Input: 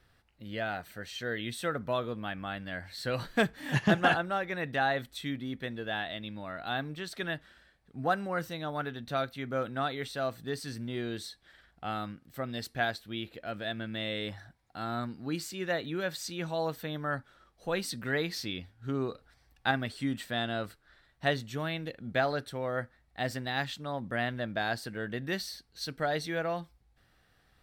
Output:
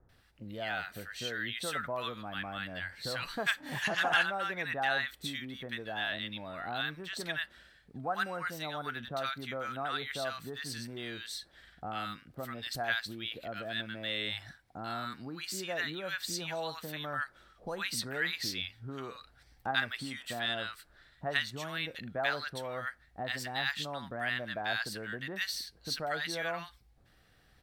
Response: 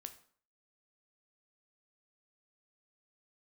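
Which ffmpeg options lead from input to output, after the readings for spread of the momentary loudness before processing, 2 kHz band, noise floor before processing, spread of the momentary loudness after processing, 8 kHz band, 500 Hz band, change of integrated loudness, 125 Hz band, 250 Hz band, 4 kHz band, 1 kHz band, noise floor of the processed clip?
10 LU, +1.0 dB, −68 dBFS, 9 LU, +2.5 dB, −5.5 dB, −1.5 dB, −8.0 dB, −8.0 dB, +2.5 dB, −2.5 dB, −65 dBFS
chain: -filter_complex "[0:a]acrossover=split=790|5000[link_01][link_02][link_03];[link_01]acompressor=threshold=-44dB:ratio=6[link_04];[link_04][link_02][link_03]amix=inputs=3:normalize=0,acrossover=split=1100[link_05][link_06];[link_06]adelay=90[link_07];[link_05][link_07]amix=inputs=2:normalize=0,volume=2.5dB"

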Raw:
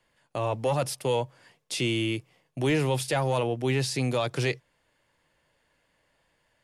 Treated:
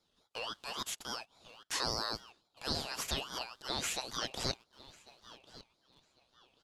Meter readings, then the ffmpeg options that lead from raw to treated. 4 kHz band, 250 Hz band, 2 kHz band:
−2.0 dB, −17.5 dB, −9.0 dB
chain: -filter_complex "[0:a]asplit=2[link_01][link_02];[link_02]adelay=1097,lowpass=frequency=1900:poles=1,volume=-15dB,asplit=2[link_03][link_04];[link_04]adelay=1097,lowpass=frequency=1900:poles=1,volume=0.44,asplit=2[link_05][link_06];[link_06]adelay=1097,lowpass=frequency=1900:poles=1,volume=0.44,asplit=2[link_07][link_08];[link_08]adelay=1097,lowpass=frequency=1900:poles=1,volume=0.44[link_09];[link_03][link_05][link_07][link_09]amix=inputs=4:normalize=0[link_10];[link_01][link_10]amix=inputs=2:normalize=0,aresample=22050,aresample=44100,asplit=2[link_11][link_12];[link_12]aeval=exprs='val(0)*gte(abs(val(0)),0.0119)':channel_layout=same,volume=-11.5dB[link_13];[link_11][link_13]amix=inputs=2:normalize=0,highshelf=frequency=6600:gain=7.5,afftfilt=real='re*lt(hypot(re,im),0.251)':imag='im*lt(hypot(re,im),0.251)':win_size=1024:overlap=0.75,highpass=frequency=1100:width=0.5412,highpass=frequency=1100:width=1.3066,aemphasis=mode=reproduction:type=50fm,aeval=exprs='val(0)*sin(2*PI*2000*n/s+2000*0.2/3.6*sin(2*PI*3.6*n/s))':channel_layout=same"

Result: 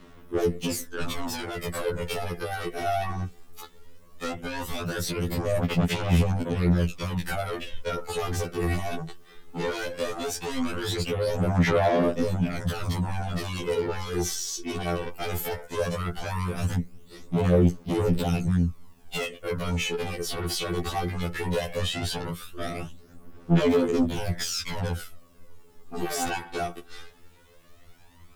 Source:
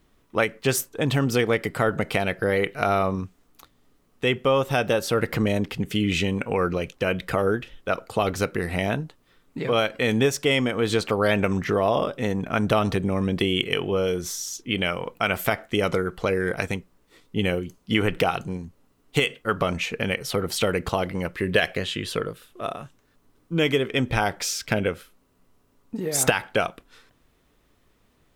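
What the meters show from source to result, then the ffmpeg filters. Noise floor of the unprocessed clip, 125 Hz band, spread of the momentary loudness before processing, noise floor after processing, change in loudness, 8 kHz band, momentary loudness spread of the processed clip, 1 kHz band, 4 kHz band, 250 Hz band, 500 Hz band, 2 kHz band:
−64 dBFS, +1.0 dB, 9 LU, −52 dBFS, −3.5 dB, −3.5 dB, 12 LU, −4.5 dB, −5.0 dB, −2.0 dB, −4.5 dB, −8.0 dB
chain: -filter_complex "[0:a]acrossover=split=530|1200|4500[link_01][link_02][link_03][link_04];[link_01]acompressor=threshold=-24dB:ratio=4[link_05];[link_02]acompressor=threshold=-37dB:ratio=4[link_06];[link_03]acompressor=threshold=-40dB:ratio=4[link_07];[link_04]acompressor=threshold=-42dB:ratio=4[link_08];[link_05][link_06][link_07][link_08]amix=inputs=4:normalize=0,alimiter=limit=-21.5dB:level=0:latency=1:release=25,tremolo=f=85:d=0.4,aeval=exprs='0.0841*(cos(1*acos(clip(val(0)/0.0841,-1,1)))-cos(1*PI/2))+0.0376*(cos(5*acos(clip(val(0)/0.0841,-1,1)))-cos(5*PI/2))':channel_layout=same,aphaser=in_gain=1:out_gain=1:delay=2.7:decay=0.61:speed=0.17:type=sinusoidal,afftfilt=real='re*2*eq(mod(b,4),0)':imag='im*2*eq(mod(b,4),0)':win_size=2048:overlap=0.75"

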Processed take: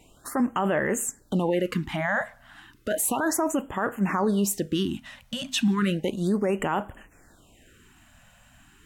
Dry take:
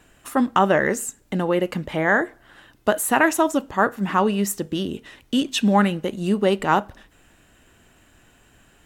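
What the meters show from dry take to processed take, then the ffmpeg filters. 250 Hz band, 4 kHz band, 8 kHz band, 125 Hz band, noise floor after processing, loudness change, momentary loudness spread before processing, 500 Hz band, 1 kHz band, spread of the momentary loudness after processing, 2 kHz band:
−3.5 dB, −3.5 dB, −0.5 dB, −2.5 dB, −57 dBFS, −5.0 dB, 9 LU, −5.5 dB, −8.0 dB, 8 LU, −7.0 dB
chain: -af "alimiter=limit=-16dB:level=0:latency=1:release=12,afftfilt=real='re*(1-between(b*sr/1024,350*pow(5000/350,0.5+0.5*sin(2*PI*0.33*pts/sr))/1.41,350*pow(5000/350,0.5+0.5*sin(2*PI*0.33*pts/sr))*1.41))':imag='im*(1-between(b*sr/1024,350*pow(5000/350,0.5+0.5*sin(2*PI*0.33*pts/sr))/1.41,350*pow(5000/350,0.5+0.5*sin(2*PI*0.33*pts/sr))*1.41))':win_size=1024:overlap=0.75"

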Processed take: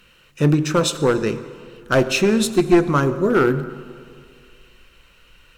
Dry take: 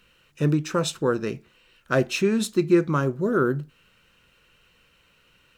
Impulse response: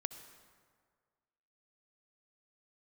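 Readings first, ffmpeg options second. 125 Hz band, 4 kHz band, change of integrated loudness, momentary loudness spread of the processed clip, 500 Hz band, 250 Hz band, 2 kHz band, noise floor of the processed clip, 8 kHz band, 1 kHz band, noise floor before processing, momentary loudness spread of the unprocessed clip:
+5.0 dB, +7.0 dB, +5.5 dB, 13 LU, +5.5 dB, +5.0 dB, +6.0 dB, −54 dBFS, +7.0 dB, +6.5 dB, −62 dBFS, 8 LU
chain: -filter_complex "[0:a]bandreject=frequency=78.07:width_type=h:width=4,bandreject=frequency=156.14:width_type=h:width=4,bandreject=frequency=234.21:width_type=h:width=4,bandreject=frequency=312.28:width_type=h:width=4,bandreject=frequency=390.35:width_type=h:width=4,bandreject=frequency=468.42:width_type=h:width=4,bandreject=frequency=546.49:width_type=h:width=4,bandreject=frequency=624.56:width_type=h:width=4,bandreject=frequency=702.63:width_type=h:width=4,bandreject=frequency=780.7:width_type=h:width=4,bandreject=frequency=858.77:width_type=h:width=4,bandreject=frequency=936.84:width_type=h:width=4,bandreject=frequency=1014.91:width_type=h:width=4,asubboost=boost=5.5:cutoff=56,aeval=exprs='clip(val(0),-1,0.119)':channel_layout=same,asplit=2[link_01][link_02];[1:a]atrim=start_sample=2205,asetrate=37044,aresample=44100[link_03];[link_02][link_03]afir=irnorm=-1:irlink=0,volume=2.5dB[link_04];[link_01][link_04]amix=inputs=2:normalize=0"

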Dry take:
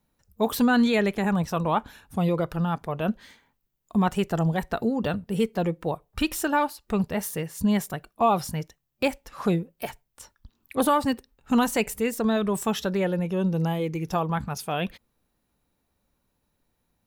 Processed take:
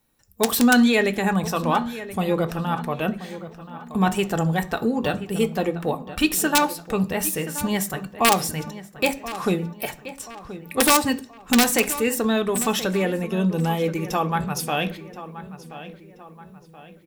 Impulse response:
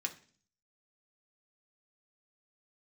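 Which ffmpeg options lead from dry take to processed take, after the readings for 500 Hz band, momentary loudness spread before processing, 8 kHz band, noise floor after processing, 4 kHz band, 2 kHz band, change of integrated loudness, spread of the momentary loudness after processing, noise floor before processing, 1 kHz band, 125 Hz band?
+3.0 dB, 9 LU, +11.5 dB, −48 dBFS, +8.5 dB, +7.0 dB, +3.5 dB, 18 LU, −76 dBFS, +3.5 dB, +1.0 dB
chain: -filter_complex "[0:a]aeval=exprs='0.299*(cos(1*acos(clip(val(0)/0.299,-1,1)))-cos(1*PI/2))+0.00211*(cos(5*acos(clip(val(0)/0.299,-1,1)))-cos(5*PI/2))':channel_layout=same,acontrast=63,aeval=exprs='(mod(2.24*val(0)+1,2)-1)/2.24':channel_layout=same,asplit=2[link_01][link_02];[link_02]adelay=1028,lowpass=frequency=3400:poles=1,volume=-14dB,asplit=2[link_03][link_04];[link_04]adelay=1028,lowpass=frequency=3400:poles=1,volume=0.45,asplit=2[link_05][link_06];[link_06]adelay=1028,lowpass=frequency=3400:poles=1,volume=0.45,asplit=2[link_07][link_08];[link_08]adelay=1028,lowpass=frequency=3400:poles=1,volume=0.45[link_09];[link_01][link_03][link_05][link_07][link_09]amix=inputs=5:normalize=0,asplit=2[link_10][link_11];[1:a]atrim=start_sample=2205,highshelf=frequency=5200:gain=8[link_12];[link_11][link_12]afir=irnorm=-1:irlink=0,volume=-0.5dB[link_13];[link_10][link_13]amix=inputs=2:normalize=0,volume=-7dB"

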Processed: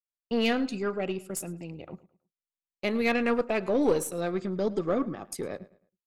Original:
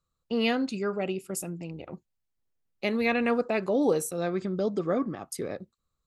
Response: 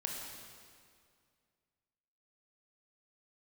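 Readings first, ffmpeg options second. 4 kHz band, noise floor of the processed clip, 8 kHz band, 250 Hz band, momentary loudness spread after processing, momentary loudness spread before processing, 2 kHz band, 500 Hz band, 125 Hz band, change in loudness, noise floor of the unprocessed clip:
0.0 dB, below −85 dBFS, −0.5 dB, −0.5 dB, 15 LU, 14 LU, 0.0 dB, 0.0 dB, −1.0 dB, 0.0 dB, −81 dBFS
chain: -filter_complex "[0:a]agate=range=-33dB:threshold=-41dB:ratio=3:detection=peak,aeval=exprs='0.224*(cos(1*acos(clip(val(0)/0.224,-1,1)))-cos(1*PI/2))+0.0178*(cos(4*acos(clip(val(0)/0.224,-1,1)))-cos(4*PI/2))+0.0112*(cos(5*acos(clip(val(0)/0.224,-1,1)))-cos(5*PI/2))+0.0126*(cos(7*acos(clip(val(0)/0.224,-1,1)))-cos(7*PI/2))':channel_layout=same,asplit=2[link_01][link_02];[link_02]adelay=107,lowpass=frequency=4400:poles=1,volume=-18.5dB,asplit=2[link_03][link_04];[link_04]adelay=107,lowpass=frequency=4400:poles=1,volume=0.32,asplit=2[link_05][link_06];[link_06]adelay=107,lowpass=frequency=4400:poles=1,volume=0.32[link_07];[link_01][link_03][link_05][link_07]amix=inputs=4:normalize=0"

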